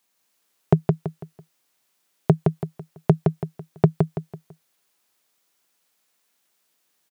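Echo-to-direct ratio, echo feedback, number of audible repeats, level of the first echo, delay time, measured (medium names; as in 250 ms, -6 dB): -3.5 dB, 35%, 4, -4.0 dB, 166 ms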